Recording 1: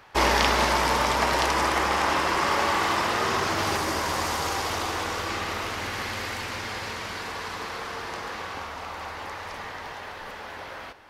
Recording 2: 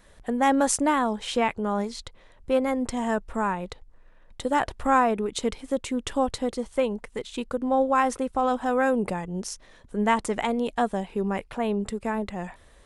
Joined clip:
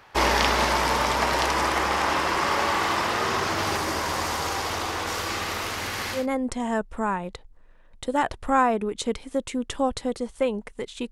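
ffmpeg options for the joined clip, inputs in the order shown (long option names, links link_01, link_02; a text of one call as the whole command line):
ffmpeg -i cue0.wav -i cue1.wav -filter_complex "[0:a]asettb=1/sr,asplit=3[link_01][link_02][link_03];[link_01]atrim=end=5.074[link_04];[link_02]atrim=start=5.07:end=6.27,asetpts=PTS-STARTPTS,afade=type=in:duration=0.004:curve=qsin,afade=type=out:start_time=1.196:duration=0.004:curve=qsin,highshelf=frequency=5500:gain=8[link_05];[link_03]atrim=start=6.266[link_06];[link_04][link_05]acrossfade=duration=0.004:curve1=hsin:curve2=qsin[link_07];[link_07][link_06]acrossfade=duration=0.004:curve1=qsin:curve2=hsin,apad=whole_dur=11.11,atrim=end=11.11,atrim=end=6.27,asetpts=PTS-STARTPTS[link_08];[1:a]atrim=start=2.48:end=7.48,asetpts=PTS-STARTPTS[link_09];[link_08][link_09]acrossfade=duration=0.16:curve1=tri:curve2=tri" out.wav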